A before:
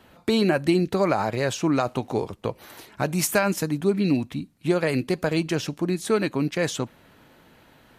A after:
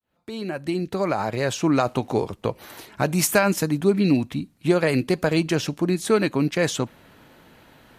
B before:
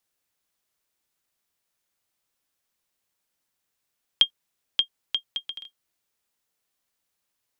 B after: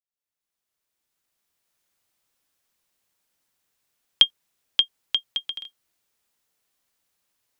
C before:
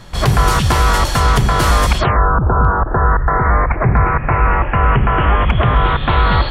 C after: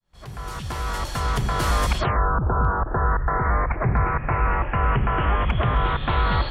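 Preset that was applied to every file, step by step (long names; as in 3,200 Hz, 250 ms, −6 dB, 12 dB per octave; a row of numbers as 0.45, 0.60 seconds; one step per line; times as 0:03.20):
fade in at the beginning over 1.84 s
loudness normalisation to −23 LKFS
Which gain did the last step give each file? +3.0, +4.0, −8.0 decibels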